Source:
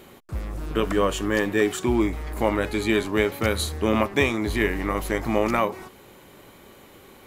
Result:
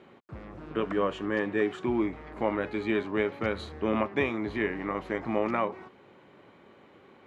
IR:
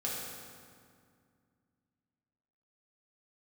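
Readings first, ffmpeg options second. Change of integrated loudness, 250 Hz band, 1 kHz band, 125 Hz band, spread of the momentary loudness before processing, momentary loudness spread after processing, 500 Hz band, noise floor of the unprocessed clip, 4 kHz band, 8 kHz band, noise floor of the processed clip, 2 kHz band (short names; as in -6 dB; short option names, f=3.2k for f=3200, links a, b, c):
-6.0 dB, -5.5 dB, -5.5 dB, -10.5 dB, 7 LU, 7 LU, -5.5 dB, -50 dBFS, -12.0 dB, under -25 dB, -57 dBFS, -7.0 dB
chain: -af "highpass=120,lowpass=2.5k,volume=-5.5dB"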